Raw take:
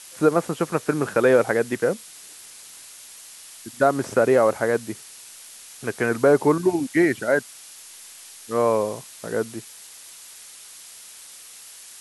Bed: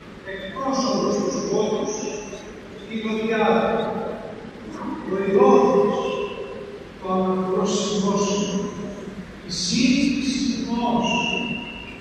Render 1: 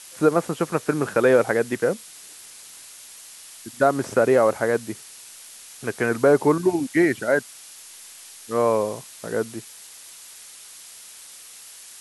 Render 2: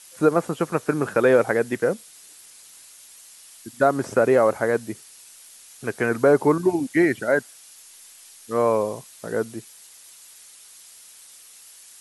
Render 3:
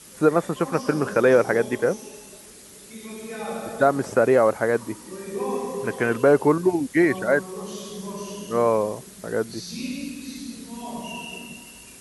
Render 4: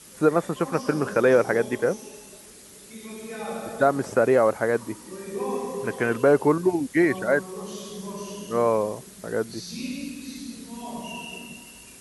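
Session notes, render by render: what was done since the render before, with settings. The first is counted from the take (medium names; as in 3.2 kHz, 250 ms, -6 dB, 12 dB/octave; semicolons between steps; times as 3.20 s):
no audible change
noise reduction 6 dB, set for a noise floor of -44 dBFS
add bed -13 dB
trim -1.5 dB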